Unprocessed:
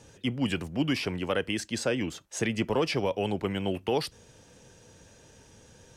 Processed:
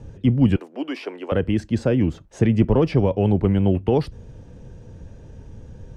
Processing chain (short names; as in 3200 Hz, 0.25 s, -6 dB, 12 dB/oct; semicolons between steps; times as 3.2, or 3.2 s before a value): 0.56–1.32 Bessel high-pass 520 Hz, order 8; tilt -4.5 dB/oct; gain +2.5 dB